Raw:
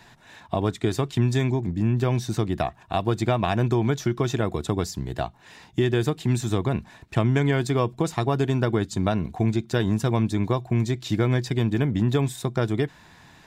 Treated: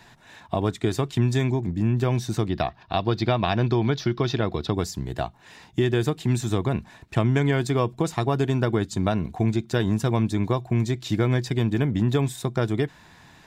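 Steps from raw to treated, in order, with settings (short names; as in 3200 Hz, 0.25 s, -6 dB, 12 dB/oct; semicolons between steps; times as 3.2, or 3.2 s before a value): 2.49–4.75 resonant high shelf 6100 Hz -9.5 dB, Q 3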